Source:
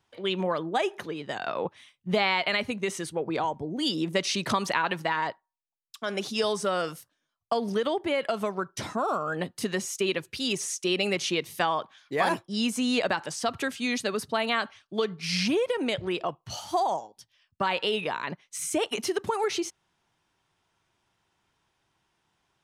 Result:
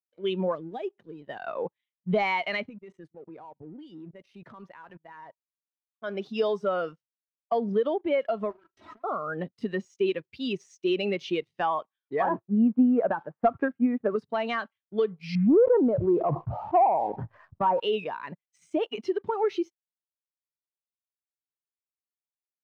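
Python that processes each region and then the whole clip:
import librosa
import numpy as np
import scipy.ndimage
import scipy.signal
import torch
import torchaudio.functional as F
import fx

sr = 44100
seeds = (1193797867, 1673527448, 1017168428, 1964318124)

y = fx.chain(x, sr, fx.block_float(bits=5),
    fx.peak_eq(hz=1300.0, db=-10.5, octaves=2.8), at=(0.55, 1.22))
y = fx.chain(y, sr, fx.level_steps(step_db=19),
    fx.peak_eq(hz=4700.0, db=-7.0, octaves=1.5), at=(2.69, 6.04))
y = fx.chain(y, sr, fx.lower_of_two(delay_ms=3.1),
    fx.highpass(hz=78.0, slope=12),
    fx.over_compress(threshold_db=-42.0, ratio=-1.0), at=(8.5, 9.04))
y = fx.chain(y, sr, fx.lowpass(hz=1600.0, slope=24),
    fx.transient(attack_db=9, sustain_db=3), at=(12.22, 14.16))
y = fx.chain(y, sr, fx.lowpass(hz=1300.0, slope=24),
    fx.leveller(passes=1),
    fx.sustainer(db_per_s=27.0), at=(15.35, 17.8))
y = scipy.signal.sosfilt(scipy.signal.butter(2, 4100.0, 'lowpass', fs=sr, output='sos'), y)
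y = fx.leveller(y, sr, passes=2)
y = fx.spectral_expand(y, sr, expansion=1.5)
y = F.gain(torch.from_numpy(y), -4.0).numpy()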